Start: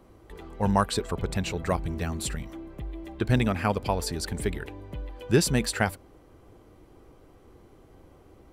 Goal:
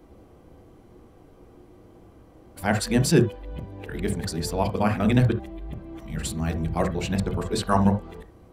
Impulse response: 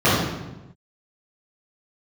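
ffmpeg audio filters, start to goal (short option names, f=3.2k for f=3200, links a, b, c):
-filter_complex "[0:a]areverse,asplit=2[a][b];[b]lowpass=f=1.2k:p=1[c];[1:a]atrim=start_sample=2205,atrim=end_sample=3528[d];[c][d]afir=irnorm=-1:irlink=0,volume=-25.5dB[e];[a][e]amix=inputs=2:normalize=0"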